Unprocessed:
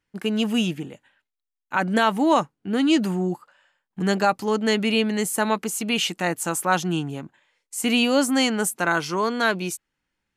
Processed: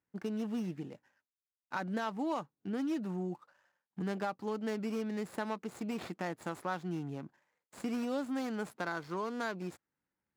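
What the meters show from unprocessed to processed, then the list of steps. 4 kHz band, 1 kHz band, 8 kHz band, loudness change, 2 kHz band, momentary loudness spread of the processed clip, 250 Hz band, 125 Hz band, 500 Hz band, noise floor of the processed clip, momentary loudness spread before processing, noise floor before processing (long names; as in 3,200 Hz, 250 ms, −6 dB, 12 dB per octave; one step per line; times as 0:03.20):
−24.5 dB, −15.5 dB, −26.0 dB, −15.5 dB, −17.5 dB, 8 LU, −13.5 dB, −12.5 dB, −14.0 dB, below −85 dBFS, 9 LU, −84 dBFS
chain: running median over 15 samples
downward compressor 2.5 to 1, threshold −29 dBFS, peak gain reduction 10.5 dB
high-pass filter 87 Hz
high-shelf EQ 10,000 Hz −6.5 dB
level −7 dB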